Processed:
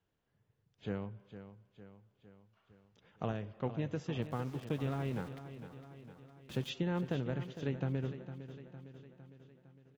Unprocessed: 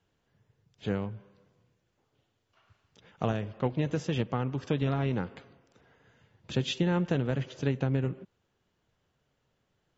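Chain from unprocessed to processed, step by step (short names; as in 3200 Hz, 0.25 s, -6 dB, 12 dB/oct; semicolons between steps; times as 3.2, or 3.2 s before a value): high shelf 5700 Hz -8 dB; 4.22–6.7 sample gate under -42 dBFS; feedback echo 0.457 s, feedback 57%, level -12 dB; gain -7.5 dB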